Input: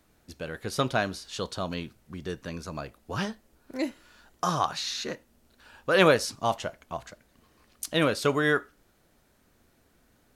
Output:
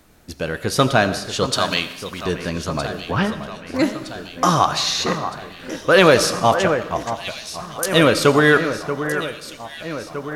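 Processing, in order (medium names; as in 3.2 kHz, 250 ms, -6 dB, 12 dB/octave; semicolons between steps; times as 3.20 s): 3.11–3.75 s: low-pass 2.9 kHz 12 dB/octave; in parallel at -10 dB: hard clipper -25 dBFS, distortion -5 dB; 1.53–2.25 s: on the sum: tilt shelf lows -9 dB, about 790 Hz; echo whose repeats swap between lows and highs 632 ms, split 2.3 kHz, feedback 77%, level -10 dB; on a send at -12.5 dB: reverberation RT60 1.0 s, pre-delay 45 ms; on the sum: loudness maximiser +10 dB; trim -1 dB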